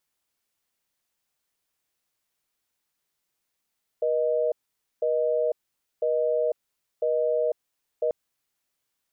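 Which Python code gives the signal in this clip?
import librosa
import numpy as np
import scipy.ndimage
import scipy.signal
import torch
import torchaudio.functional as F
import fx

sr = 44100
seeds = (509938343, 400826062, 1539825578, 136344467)

y = fx.call_progress(sr, length_s=4.09, kind='busy tone', level_db=-24.0)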